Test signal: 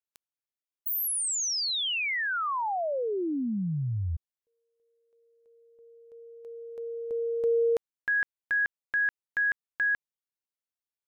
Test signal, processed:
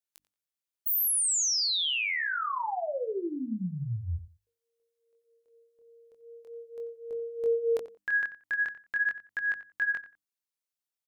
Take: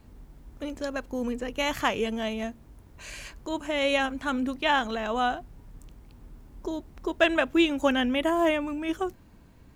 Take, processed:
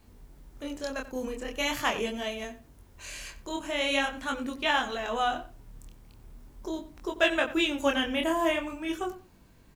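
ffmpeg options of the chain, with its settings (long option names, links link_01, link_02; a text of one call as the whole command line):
ffmpeg -i in.wav -filter_complex "[0:a]highshelf=frequency=3000:gain=6.5,bandreject=frequency=50:width_type=h:width=6,bandreject=frequency=100:width_type=h:width=6,bandreject=frequency=150:width_type=h:width=6,bandreject=frequency=200:width_type=h:width=6,bandreject=frequency=250:width_type=h:width=6,bandreject=frequency=300:width_type=h:width=6,flanger=delay=20:depth=7.5:speed=0.42,asplit=2[link_01][link_02];[link_02]adelay=90,lowpass=frequency=2900:poles=1,volume=-14dB,asplit=2[link_03][link_04];[link_04]adelay=90,lowpass=frequency=2900:poles=1,volume=0.2[link_05];[link_03][link_05]amix=inputs=2:normalize=0[link_06];[link_01][link_06]amix=inputs=2:normalize=0" out.wav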